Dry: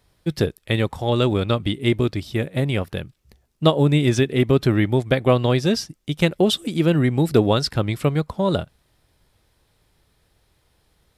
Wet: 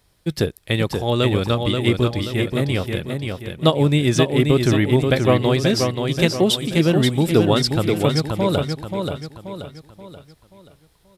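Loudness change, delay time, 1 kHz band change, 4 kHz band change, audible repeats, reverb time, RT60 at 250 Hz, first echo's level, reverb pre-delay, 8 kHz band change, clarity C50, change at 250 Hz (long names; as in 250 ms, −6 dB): +1.5 dB, 531 ms, +1.5 dB, +3.5 dB, 4, no reverb audible, no reverb audible, −5.0 dB, no reverb audible, +5.5 dB, no reverb audible, +1.5 dB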